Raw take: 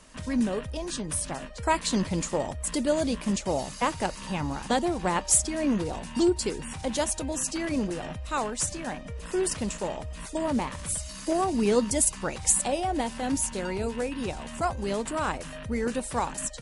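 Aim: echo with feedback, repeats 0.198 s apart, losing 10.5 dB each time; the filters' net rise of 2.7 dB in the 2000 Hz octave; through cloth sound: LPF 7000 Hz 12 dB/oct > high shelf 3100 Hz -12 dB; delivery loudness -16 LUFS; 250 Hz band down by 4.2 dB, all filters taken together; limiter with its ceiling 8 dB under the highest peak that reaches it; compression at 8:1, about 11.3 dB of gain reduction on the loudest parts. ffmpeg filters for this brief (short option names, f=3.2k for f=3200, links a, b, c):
-af "equalizer=f=250:t=o:g=-5.5,equalizer=f=2k:t=o:g=7.5,acompressor=threshold=-29dB:ratio=8,alimiter=level_in=1dB:limit=-24dB:level=0:latency=1,volume=-1dB,lowpass=7k,highshelf=f=3.1k:g=-12,aecho=1:1:198|396|594:0.299|0.0896|0.0269,volume=21dB"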